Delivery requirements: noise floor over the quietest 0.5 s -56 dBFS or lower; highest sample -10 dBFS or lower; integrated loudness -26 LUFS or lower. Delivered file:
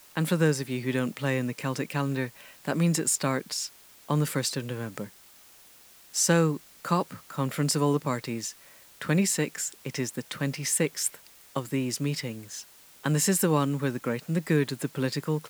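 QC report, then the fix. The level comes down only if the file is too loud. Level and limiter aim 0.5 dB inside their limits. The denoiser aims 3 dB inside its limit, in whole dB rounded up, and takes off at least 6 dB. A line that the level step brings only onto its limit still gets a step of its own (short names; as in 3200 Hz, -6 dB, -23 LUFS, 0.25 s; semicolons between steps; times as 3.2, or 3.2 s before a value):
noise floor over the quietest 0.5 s -54 dBFS: fail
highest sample -9.0 dBFS: fail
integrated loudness -28.0 LUFS: OK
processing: denoiser 6 dB, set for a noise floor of -54 dBFS; limiter -10.5 dBFS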